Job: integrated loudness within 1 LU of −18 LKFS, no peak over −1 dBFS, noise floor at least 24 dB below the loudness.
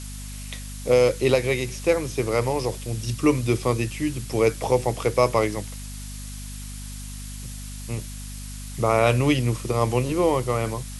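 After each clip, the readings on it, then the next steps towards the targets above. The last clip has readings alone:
mains hum 50 Hz; hum harmonics up to 250 Hz; level of the hum −34 dBFS; background noise floor −35 dBFS; target noise floor −47 dBFS; integrated loudness −23.0 LKFS; sample peak −5.0 dBFS; target loudness −18.0 LKFS
→ mains-hum notches 50/100/150/200/250 Hz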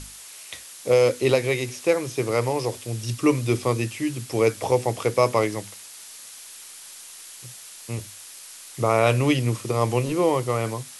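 mains hum none found; background noise floor −43 dBFS; target noise floor −48 dBFS
→ broadband denoise 6 dB, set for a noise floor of −43 dBFS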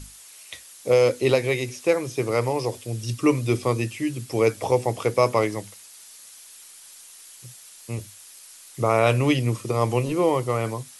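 background noise floor −47 dBFS; integrated loudness −23.0 LKFS; sample peak −5.0 dBFS; target loudness −18.0 LKFS
→ level +5 dB
brickwall limiter −1 dBFS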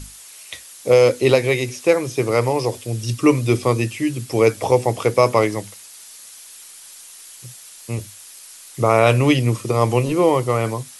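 integrated loudness −18.0 LKFS; sample peak −1.0 dBFS; background noise floor −42 dBFS

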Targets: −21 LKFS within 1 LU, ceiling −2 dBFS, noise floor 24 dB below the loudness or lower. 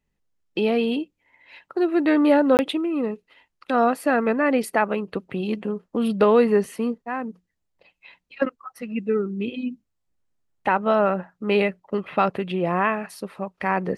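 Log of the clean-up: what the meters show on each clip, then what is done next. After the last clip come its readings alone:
number of dropouts 1; longest dropout 19 ms; integrated loudness −23.0 LKFS; sample peak −6.0 dBFS; target loudness −21.0 LKFS
→ repair the gap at 0:02.57, 19 ms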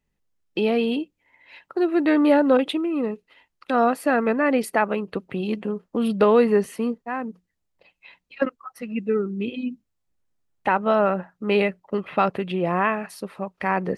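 number of dropouts 0; integrated loudness −23.0 LKFS; sample peak −6.0 dBFS; target loudness −21.0 LKFS
→ level +2 dB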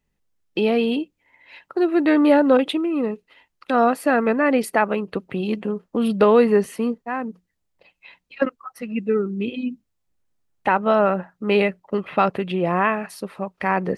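integrated loudness −21.0 LKFS; sample peak −4.0 dBFS; background noise floor −75 dBFS

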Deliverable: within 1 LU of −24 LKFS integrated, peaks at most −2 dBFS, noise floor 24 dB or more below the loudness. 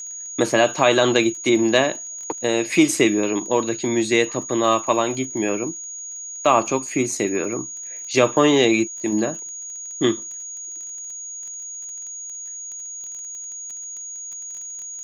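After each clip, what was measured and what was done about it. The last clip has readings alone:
crackle rate 20 per second; interfering tone 6,700 Hz; level of the tone −31 dBFS; integrated loudness −22.0 LKFS; sample peak −2.5 dBFS; target loudness −24.0 LKFS
→ click removal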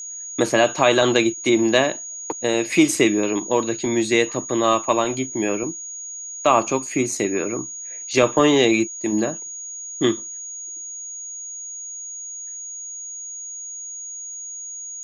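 crackle rate 0.067 per second; interfering tone 6,700 Hz; level of the tone −31 dBFS
→ notch filter 6,700 Hz, Q 30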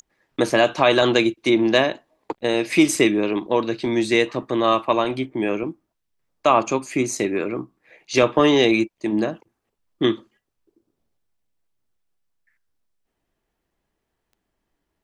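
interfering tone none found; integrated loudness −20.0 LKFS; sample peak −3.0 dBFS; target loudness −24.0 LKFS
→ level −4 dB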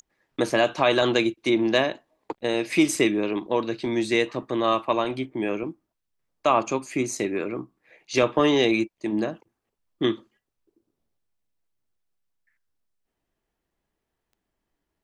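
integrated loudness −24.0 LKFS; sample peak −7.0 dBFS; background noise floor −82 dBFS

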